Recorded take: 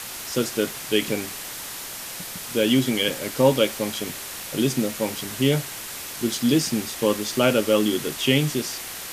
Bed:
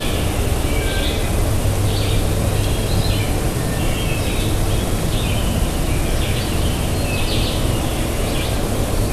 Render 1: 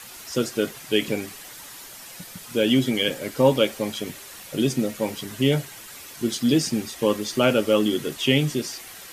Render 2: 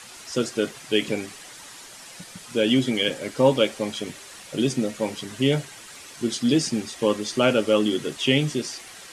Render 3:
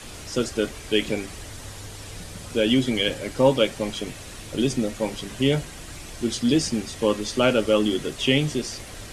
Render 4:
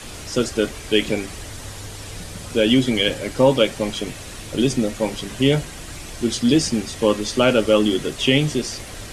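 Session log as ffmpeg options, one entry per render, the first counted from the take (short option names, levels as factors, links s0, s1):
-af "afftdn=nr=9:nf=-35"
-af "lowpass=f=10000:w=0.5412,lowpass=f=10000:w=1.3066,lowshelf=f=100:g=-5"
-filter_complex "[1:a]volume=0.075[s0];[0:a][s0]amix=inputs=2:normalize=0"
-af "volume=1.58,alimiter=limit=0.708:level=0:latency=1"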